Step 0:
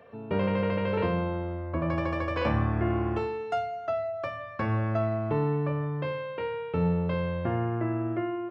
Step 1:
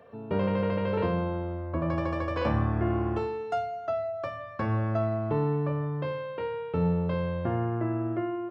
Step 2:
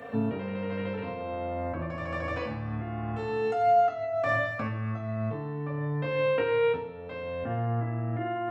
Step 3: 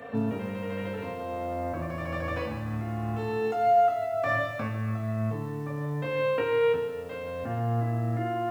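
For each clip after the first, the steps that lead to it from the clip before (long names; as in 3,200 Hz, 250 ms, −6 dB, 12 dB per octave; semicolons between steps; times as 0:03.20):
parametric band 2,300 Hz −5 dB 0.86 octaves
compressor whose output falls as the input rises −36 dBFS, ratio −1; convolution reverb RT60 1.0 s, pre-delay 3 ms, DRR −0.5 dB; level +6.5 dB
feedback echo at a low word length 146 ms, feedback 55%, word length 8 bits, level −11.5 dB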